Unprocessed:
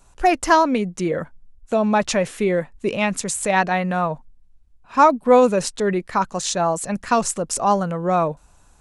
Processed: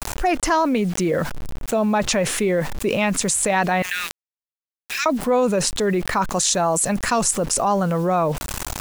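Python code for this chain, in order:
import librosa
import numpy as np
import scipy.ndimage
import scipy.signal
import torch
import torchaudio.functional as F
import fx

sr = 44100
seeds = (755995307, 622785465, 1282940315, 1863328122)

y = fx.steep_highpass(x, sr, hz=1800.0, slope=48, at=(3.82, 5.06))
y = fx.high_shelf(y, sr, hz=8200.0, db=11.5, at=(6.36, 7.31))
y = fx.quant_dither(y, sr, seeds[0], bits=8, dither='none')
y = fx.env_flatten(y, sr, amount_pct=70)
y = y * 10.0 ** (-6.5 / 20.0)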